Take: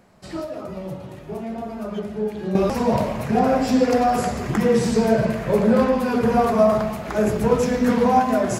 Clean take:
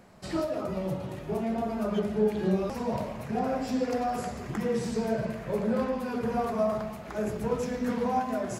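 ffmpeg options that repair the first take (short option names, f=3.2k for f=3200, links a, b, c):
-af "asetnsamples=n=441:p=0,asendcmd='2.55 volume volume -11dB',volume=0dB"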